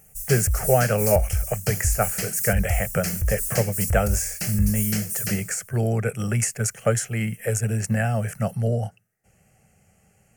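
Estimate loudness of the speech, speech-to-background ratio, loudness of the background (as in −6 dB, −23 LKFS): −24.5 LKFS, 1.5 dB, −26.0 LKFS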